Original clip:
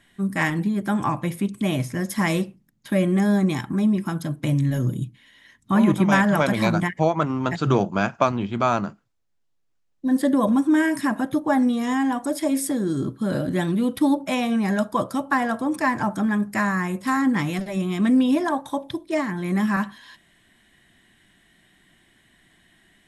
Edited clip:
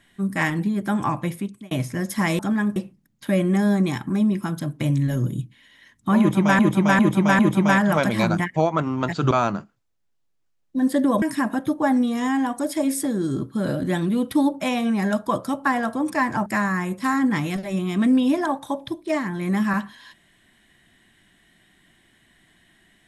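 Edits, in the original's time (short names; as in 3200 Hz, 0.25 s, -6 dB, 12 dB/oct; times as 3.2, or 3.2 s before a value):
1.27–1.71 fade out
5.82–6.22 loop, 4 plays
7.74–8.6 cut
10.51–10.88 cut
16.12–16.49 move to 2.39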